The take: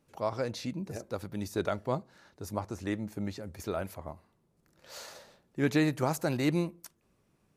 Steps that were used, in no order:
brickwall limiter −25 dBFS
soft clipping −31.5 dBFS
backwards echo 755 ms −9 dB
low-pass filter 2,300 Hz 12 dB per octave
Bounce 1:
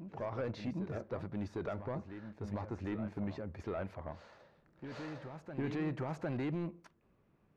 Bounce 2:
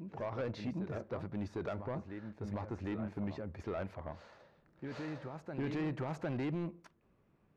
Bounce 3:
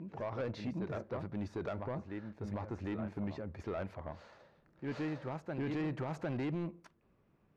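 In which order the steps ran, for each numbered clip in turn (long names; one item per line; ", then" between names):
brickwall limiter, then soft clipping, then low-pass filter, then backwards echo
brickwall limiter, then low-pass filter, then backwards echo, then soft clipping
backwards echo, then brickwall limiter, then low-pass filter, then soft clipping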